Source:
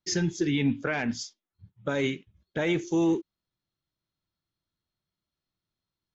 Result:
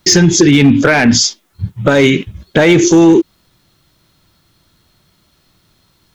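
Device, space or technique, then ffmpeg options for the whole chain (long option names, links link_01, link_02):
loud club master: -af "acompressor=threshold=-28dB:ratio=2.5,asoftclip=type=hard:threshold=-24dB,alimiter=level_in=33.5dB:limit=-1dB:release=50:level=0:latency=1,volume=-1dB"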